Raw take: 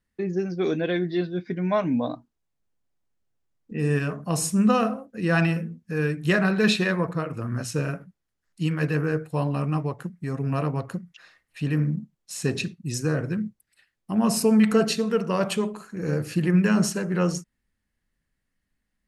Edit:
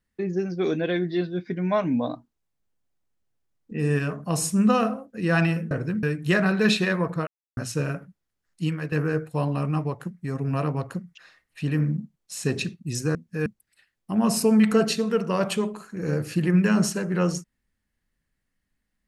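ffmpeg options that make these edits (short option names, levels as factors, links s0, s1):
-filter_complex "[0:a]asplit=8[s0][s1][s2][s3][s4][s5][s6][s7];[s0]atrim=end=5.712[s8];[s1]atrim=start=13.138:end=13.462[s9];[s2]atrim=start=6.018:end=7.26,asetpts=PTS-STARTPTS,afade=t=out:st=1.238:d=0.004:c=hsin[s10];[s3]atrim=start=7.26:end=7.56,asetpts=PTS-STARTPTS,volume=0[s11];[s4]atrim=start=7.56:end=8.91,asetpts=PTS-STARTPTS,afade=t=in:d=0.004:c=hsin,afade=t=out:st=1.07:d=0.28:silence=0.251189[s12];[s5]atrim=start=8.91:end=13.142,asetpts=PTS-STARTPTS,afade=t=in:d=0.004:c=hsin:silence=0.251189[s13];[s6]atrim=start=5.708:end=6.022[s14];[s7]atrim=start=13.458[s15];[s8][s9]acrossfade=d=0.004:c1=hsin:c2=hsin[s16];[s10][s11][s12][s13]concat=n=4:v=0:a=1[s17];[s16][s17]acrossfade=d=0.004:c1=hsin:c2=hsin[s18];[s18][s14]acrossfade=d=0.004:c1=hsin:c2=hsin[s19];[s19][s15]acrossfade=d=0.004:c1=hsin:c2=hsin"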